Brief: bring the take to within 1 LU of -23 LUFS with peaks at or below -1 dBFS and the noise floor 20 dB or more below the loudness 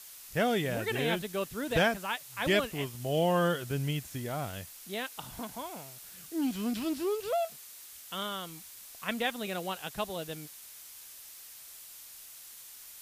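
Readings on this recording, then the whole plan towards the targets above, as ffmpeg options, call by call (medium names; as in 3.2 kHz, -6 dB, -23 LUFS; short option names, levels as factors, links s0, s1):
noise floor -50 dBFS; noise floor target -53 dBFS; loudness -32.5 LUFS; peak level -13.5 dBFS; loudness target -23.0 LUFS
-> -af "afftdn=nr=6:nf=-50"
-af "volume=2.99"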